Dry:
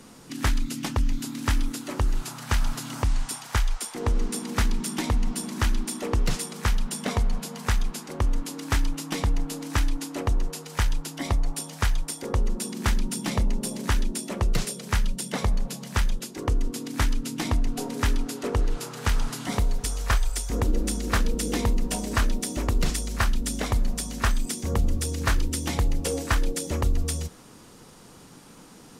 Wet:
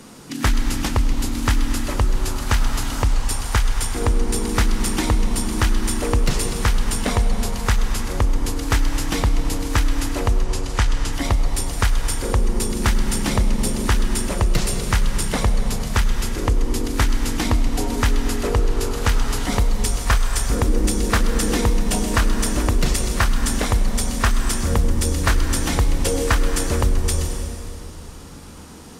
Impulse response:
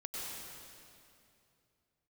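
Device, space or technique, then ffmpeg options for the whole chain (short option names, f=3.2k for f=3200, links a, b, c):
ducked reverb: -filter_complex "[0:a]asplit=3[a][b][c];[1:a]atrim=start_sample=2205[d];[b][d]afir=irnorm=-1:irlink=0[e];[c]apad=whole_len=1278663[f];[e][f]sidechaincompress=threshold=-24dB:ratio=3:attack=16:release=108,volume=-2dB[g];[a][g]amix=inputs=2:normalize=0,asettb=1/sr,asplit=3[h][i][j];[h]atrim=end=10.434[k];[i]atrim=start=10.43:end=11.13,asetpts=PTS-STARTPTS,afade=t=in:d=0.004:c=qsin,afade=t=out:st=0.696:d=0.004:c=qsin,lowpass=9.1k[l];[j]atrim=start=11.126[m];[k][l]acrossfade=d=0.004:c1=hsin:c2=qsin[n];[n][m]acrossfade=d=0.004:c1=qsin:c2=hsin,volume=3dB"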